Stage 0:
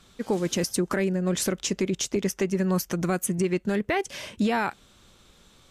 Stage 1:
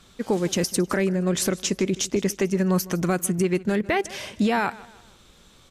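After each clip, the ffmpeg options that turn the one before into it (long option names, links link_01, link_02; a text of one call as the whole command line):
ffmpeg -i in.wav -af "aecho=1:1:156|312|468:0.1|0.041|0.0168,volume=2.5dB" out.wav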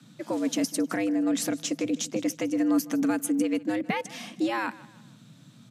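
ffmpeg -i in.wav -af "afreqshift=110,lowshelf=frequency=300:width_type=q:width=3:gain=7.5,volume=-5.5dB" out.wav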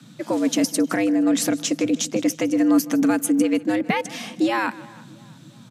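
ffmpeg -i in.wav -filter_complex "[0:a]asplit=2[link_01][link_02];[link_02]adelay=341,lowpass=frequency=2000:poles=1,volume=-23dB,asplit=2[link_03][link_04];[link_04]adelay=341,lowpass=frequency=2000:poles=1,volume=0.5,asplit=2[link_05][link_06];[link_06]adelay=341,lowpass=frequency=2000:poles=1,volume=0.5[link_07];[link_01][link_03][link_05][link_07]amix=inputs=4:normalize=0,volume=6.5dB" out.wav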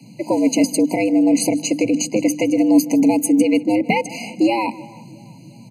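ffmpeg -i in.wav -af "bandreject=frequency=50:width_type=h:width=6,bandreject=frequency=100:width_type=h:width=6,bandreject=frequency=150:width_type=h:width=6,bandreject=frequency=200:width_type=h:width=6,bandreject=frequency=250:width_type=h:width=6,bandreject=frequency=300:width_type=h:width=6,afftfilt=real='re*eq(mod(floor(b*sr/1024/1000),2),0)':imag='im*eq(mod(floor(b*sr/1024/1000),2),0)':win_size=1024:overlap=0.75,volume=5dB" out.wav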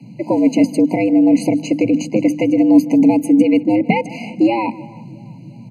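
ffmpeg -i in.wav -af "bass=frequency=250:gain=6,treble=frequency=4000:gain=-14,volume=1dB" out.wav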